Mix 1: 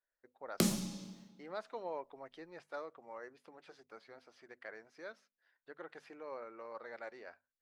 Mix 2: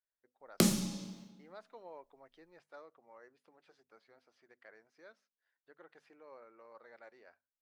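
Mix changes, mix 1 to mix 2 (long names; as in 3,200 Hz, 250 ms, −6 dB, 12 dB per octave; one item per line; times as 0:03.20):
speech −9.0 dB
background +3.5 dB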